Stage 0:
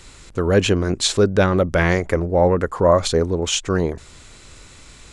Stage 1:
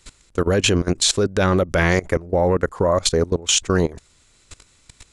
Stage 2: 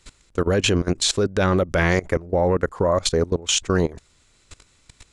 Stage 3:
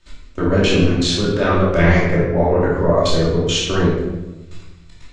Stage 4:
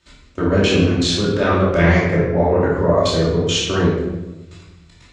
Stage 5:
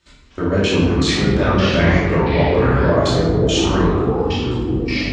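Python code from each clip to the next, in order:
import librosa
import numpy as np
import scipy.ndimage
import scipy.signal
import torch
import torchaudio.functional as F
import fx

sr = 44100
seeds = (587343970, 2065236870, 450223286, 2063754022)

y1 = fx.high_shelf(x, sr, hz=3700.0, db=6.5)
y1 = fx.level_steps(y1, sr, step_db=20)
y1 = y1 * 10.0 ** (3.5 / 20.0)
y2 = fx.high_shelf(y1, sr, hz=7600.0, db=-5.5)
y2 = y2 * 10.0 ** (-1.5 / 20.0)
y3 = scipy.signal.sosfilt(scipy.signal.butter(2, 5200.0, 'lowpass', fs=sr, output='sos'), y2)
y3 = fx.chorus_voices(y3, sr, voices=6, hz=0.39, base_ms=27, depth_ms=3.9, mix_pct=40)
y3 = fx.room_shoebox(y3, sr, seeds[0], volume_m3=440.0, walls='mixed', distance_m=2.7)
y4 = scipy.signal.sosfilt(scipy.signal.butter(2, 55.0, 'highpass', fs=sr, output='sos'), y3)
y5 = fx.echo_pitch(y4, sr, ms=225, semitones=-5, count=2, db_per_echo=-3.0)
y5 = y5 * 10.0 ** (-1.5 / 20.0)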